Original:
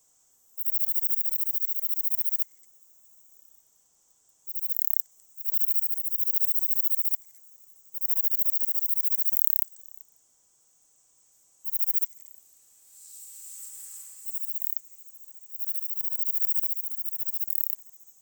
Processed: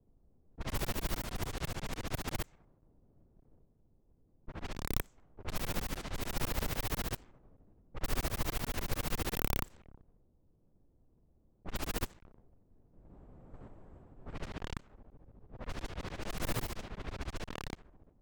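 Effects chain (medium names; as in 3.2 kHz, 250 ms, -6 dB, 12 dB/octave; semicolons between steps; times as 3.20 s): block-companded coder 3-bit; tilt EQ -4 dB/octave; level-controlled noise filter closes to 380 Hz, open at -33.5 dBFS; trim +3 dB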